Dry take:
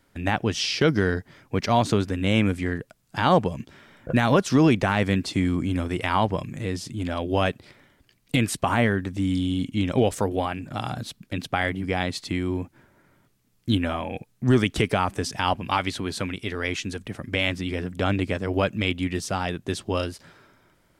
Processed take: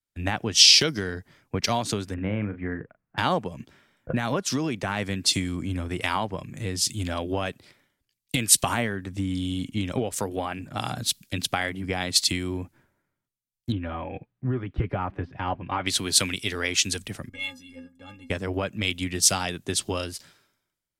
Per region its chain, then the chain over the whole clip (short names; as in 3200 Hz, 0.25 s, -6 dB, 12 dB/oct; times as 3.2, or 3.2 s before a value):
2.14–3.18 LPF 2100 Hz 24 dB/oct + doubler 38 ms -9 dB
13.72–15.86 de-esser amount 85% + air absorption 340 m + notch comb 220 Hz
17.29–18.3 low shelf 130 Hz +11.5 dB + metallic resonator 250 Hz, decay 0.25 s, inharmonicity 0.03
whole clip: compressor 12:1, threshold -26 dBFS; high shelf 3100 Hz +10.5 dB; three-band expander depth 100%; gain +2 dB